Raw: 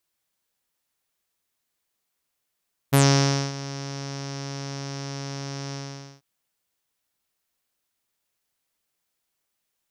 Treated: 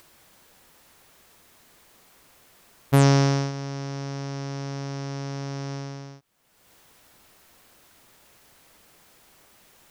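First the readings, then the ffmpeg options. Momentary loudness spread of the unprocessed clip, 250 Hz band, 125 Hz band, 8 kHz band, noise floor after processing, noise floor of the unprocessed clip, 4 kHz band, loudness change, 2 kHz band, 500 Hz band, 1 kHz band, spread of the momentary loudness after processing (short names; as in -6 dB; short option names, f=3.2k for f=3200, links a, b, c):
15 LU, +2.0 dB, +2.0 dB, -6.0 dB, -58 dBFS, -79 dBFS, -5.0 dB, +0.5 dB, -2.0 dB, +1.5 dB, +0.5 dB, 17 LU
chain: -af "highshelf=f=2.2k:g=-9,acompressor=mode=upward:threshold=-36dB:ratio=2.5,volume=2dB"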